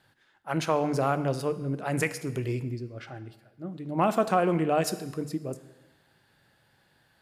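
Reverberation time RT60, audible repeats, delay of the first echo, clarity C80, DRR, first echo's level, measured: 1.1 s, no echo audible, no echo audible, 16.0 dB, 12.0 dB, no echo audible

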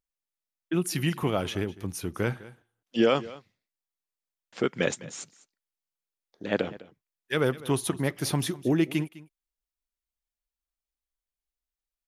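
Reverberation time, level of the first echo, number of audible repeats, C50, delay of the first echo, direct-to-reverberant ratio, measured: no reverb audible, −19.0 dB, 1, no reverb audible, 205 ms, no reverb audible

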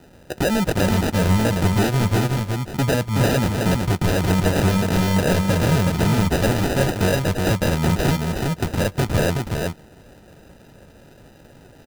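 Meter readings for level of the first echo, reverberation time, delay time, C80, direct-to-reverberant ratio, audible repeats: −3.5 dB, no reverb audible, 372 ms, no reverb audible, no reverb audible, 1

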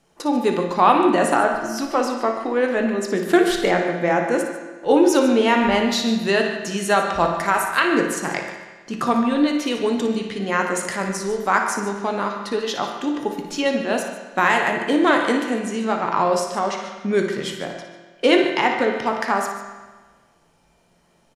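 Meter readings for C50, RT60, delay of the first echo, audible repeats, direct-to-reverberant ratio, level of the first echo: 3.5 dB, 1.4 s, 58 ms, 2, 1.5 dB, −10.0 dB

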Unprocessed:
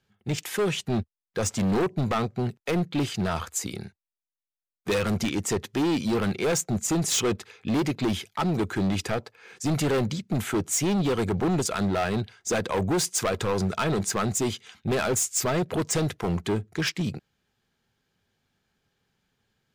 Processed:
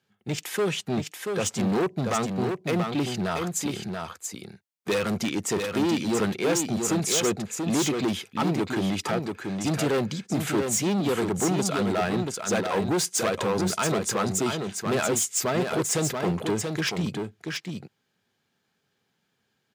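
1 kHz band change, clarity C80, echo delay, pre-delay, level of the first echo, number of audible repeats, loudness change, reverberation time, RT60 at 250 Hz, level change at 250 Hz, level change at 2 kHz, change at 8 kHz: +1.0 dB, no reverb audible, 683 ms, no reverb audible, −5.0 dB, 1, +0.5 dB, no reverb audible, no reverb audible, +0.5 dB, +1.0 dB, +1.0 dB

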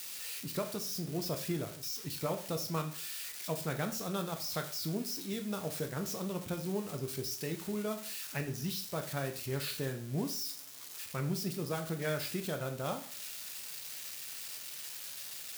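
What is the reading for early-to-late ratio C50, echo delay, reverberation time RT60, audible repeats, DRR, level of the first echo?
11.0 dB, no echo audible, 0.45 s, no echo audible, 5.0 dB, no echo audible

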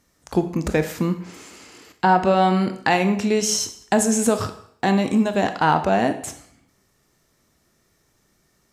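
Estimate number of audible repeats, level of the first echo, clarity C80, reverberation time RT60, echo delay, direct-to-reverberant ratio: no echo audible, no echo audible, 14.5 dB, 0.65 s, no echo audible, 8.5 dB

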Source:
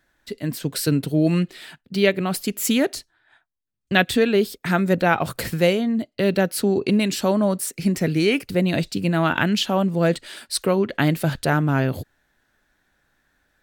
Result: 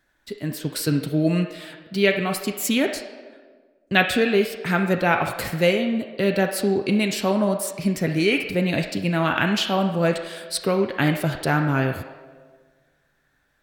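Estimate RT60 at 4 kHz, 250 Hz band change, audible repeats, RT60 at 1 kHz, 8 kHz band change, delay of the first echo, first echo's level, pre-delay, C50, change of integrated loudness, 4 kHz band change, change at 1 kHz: 0.95 s, −2.0 dB, no echo audible, 1.3 s, −2.0 dB, no echo audible, no echo audible, 8 ms, 6.5 dB, −1.0 dB, 0.0 dB, 0.0 dB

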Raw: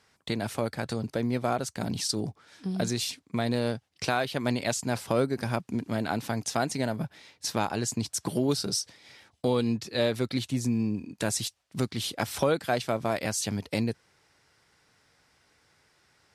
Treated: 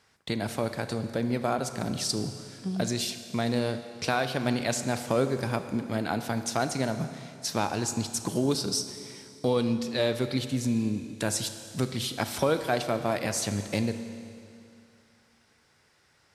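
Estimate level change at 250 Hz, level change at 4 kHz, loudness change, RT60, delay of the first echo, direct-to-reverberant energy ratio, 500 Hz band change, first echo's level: +0.5 dB, +0.5 dB, +0.5 dB, 2.5 s, no echo audible, 9.0 dB, +0.5 dB, no echo audible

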